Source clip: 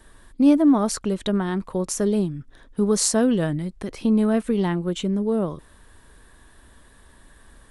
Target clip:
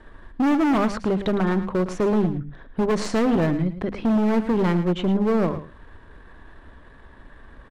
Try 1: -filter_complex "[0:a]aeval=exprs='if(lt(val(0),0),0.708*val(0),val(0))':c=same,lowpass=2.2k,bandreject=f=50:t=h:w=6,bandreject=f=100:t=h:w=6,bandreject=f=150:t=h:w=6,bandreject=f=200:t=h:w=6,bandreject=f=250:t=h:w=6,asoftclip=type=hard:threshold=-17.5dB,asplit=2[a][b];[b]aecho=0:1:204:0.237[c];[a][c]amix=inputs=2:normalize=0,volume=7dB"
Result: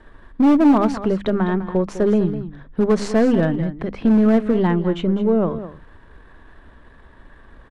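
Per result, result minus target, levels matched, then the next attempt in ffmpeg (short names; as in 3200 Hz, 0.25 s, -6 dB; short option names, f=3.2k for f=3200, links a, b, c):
echo 95 ms late; hard clip: distortion -6 dB
-filter_complex "[0:a]aeval=exprs='if(lt(val(0),0),0.708*val(0),val(0))':c=same,lowpass=2.2k,bandreject=f=50:t=h:w=6,bandreject=f=100:t=h:w=6,bandreject=f=150:t=h:w=6,bandreject=f=200:t=h:w=6,bandreject=f=250:t=h:w=6,asoftclip=type=hard:threshold=-17.5dB,asplit=2[a][b];[b]aecho=0:1:109:0.237[c];[a][c]amix=inputs=2:normalize=0,volume=7dB"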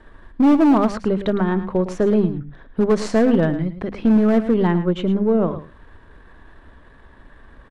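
hard clip: distortion -6 dB
-filter_complex "[0:a]aeval=exprs='if(lt(val(0),0),0.708*val(0),val(0))':c=same,lowpass=2.2k,bandreject=f=50:t=h:w=6,bandreject=f=100:t=h:w=6,bandreject=f=150:t=h:w=6,bandreject=f=200:t=h:w=6,bandreject=f=250:t=h:w=6,asoftclip=type=hard:threshold=-24.5dB,asplit=2[a][b];[b]aecho=0:1:109:0.237[c];[a][c]amix=inputs=2:normalize=0,volume=7dB"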